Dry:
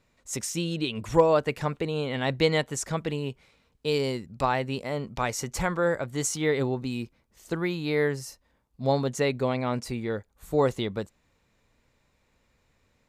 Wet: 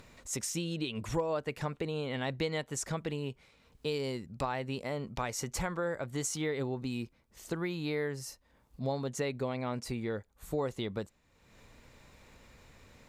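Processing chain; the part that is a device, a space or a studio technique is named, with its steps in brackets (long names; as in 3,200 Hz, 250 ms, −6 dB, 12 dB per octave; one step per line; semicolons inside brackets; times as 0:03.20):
upward and downward compression (upward compression, threshold −42 dBFS; downward compressor 3 to 1, threshold −30 dBFS, peak gain reduction 12.5 dB)
level −2 dB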